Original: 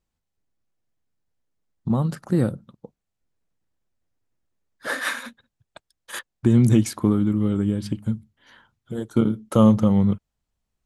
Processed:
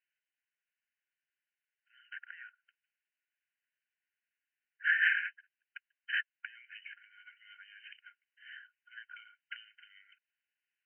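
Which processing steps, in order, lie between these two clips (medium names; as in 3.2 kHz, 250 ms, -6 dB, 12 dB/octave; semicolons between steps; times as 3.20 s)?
compression 10:1, threshold -25 dBFS, peak gain reduction 15 dB; brick-wall FIR band-pass 1.4–3.1 kHz; trim +4 dB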